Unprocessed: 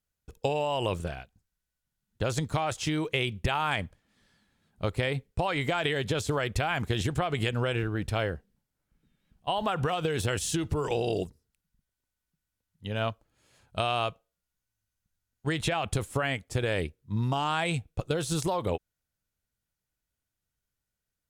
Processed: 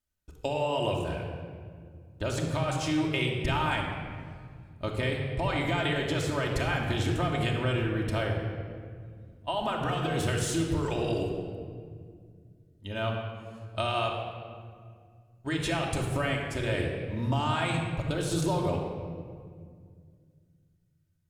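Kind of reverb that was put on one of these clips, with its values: simulated room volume 3500 m³, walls mixed, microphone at 2.7 m; trim -4 dB

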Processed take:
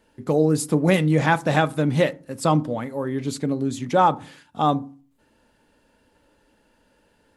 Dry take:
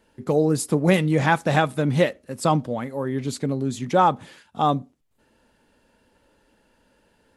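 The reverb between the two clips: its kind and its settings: FDN reverb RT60 0.4 s, low-frequency decay 1.35×, high-frequency decay 0.35×, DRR 15.5 dB

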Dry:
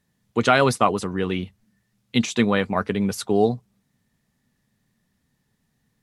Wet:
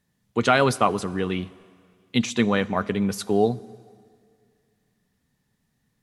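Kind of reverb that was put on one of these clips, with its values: plate-style reverb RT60 2.1 s, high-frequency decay 0.95×, DRR 19 dB; trim -1.5 dB

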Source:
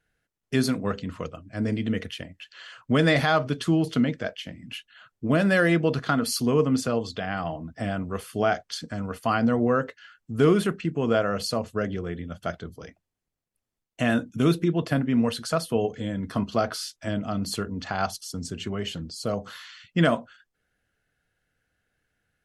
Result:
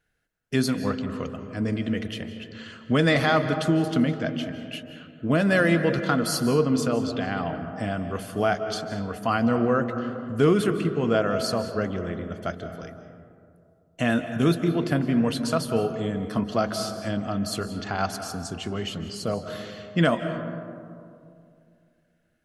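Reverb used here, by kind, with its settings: algorithmic reverb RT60 2.5 s, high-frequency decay 0.3×, pre-delay 120 ms, DRR 8.5 dB

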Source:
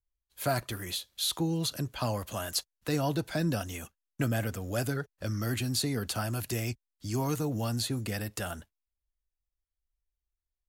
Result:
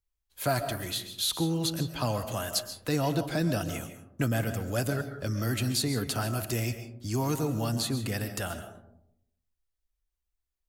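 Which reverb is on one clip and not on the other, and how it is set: algorithmic reverb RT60 0.78 s, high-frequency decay 0.3×, pre-delay 95 ms, DRR 9 dB; trim +1.5 dB

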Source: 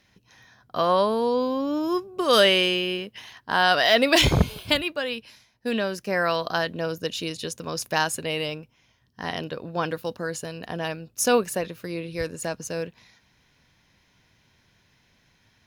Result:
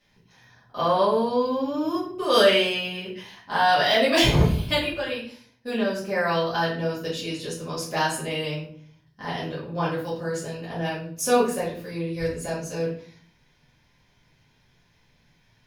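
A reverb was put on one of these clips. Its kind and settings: simulated room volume 58 m³, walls mixed, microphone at 2 m; trim -10.5 dB

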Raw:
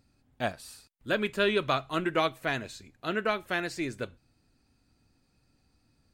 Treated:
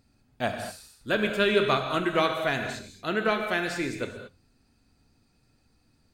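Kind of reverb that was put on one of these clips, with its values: gated-style reverb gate 250 ms flat, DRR 4.5 dB; trim +2 dB

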